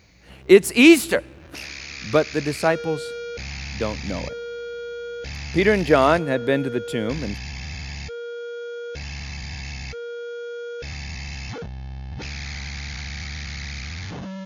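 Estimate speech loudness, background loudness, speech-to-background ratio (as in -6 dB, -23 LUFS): -19.5 LUFS, -33.0 LUFS, 13.5 dB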